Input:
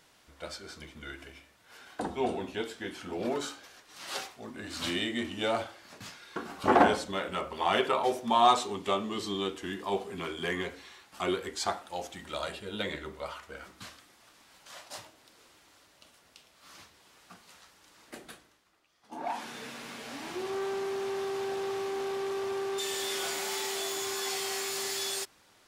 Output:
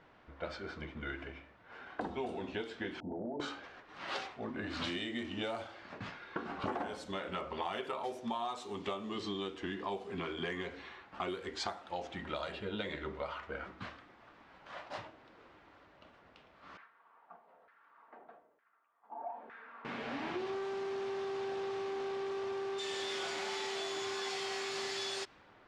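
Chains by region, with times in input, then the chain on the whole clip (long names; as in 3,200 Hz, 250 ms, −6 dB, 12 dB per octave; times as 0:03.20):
0:03.00–0:03.40: Chebyshev low-pass with heavy ripple 910 Hz, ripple 6 dB + downward compressor 4 to 1, threshold −40 dBFS
0:16.77–0:19.85: comb filter 4.4 ms, depth 34% + downward compressor 2.5 to 1, threshold −45 dBFS + auto-filter band-pass saw down 1.1 Hz 520–1,700 Hz
whole clip: low-pass that shuts in the quiet parts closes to 1,700 Hz, open at −24.5 dBFS; high-shelf EQ 9,900 Hz −10.5 dB; downward compressor 12 to 1, threshold −39 dBFS; level +4 dB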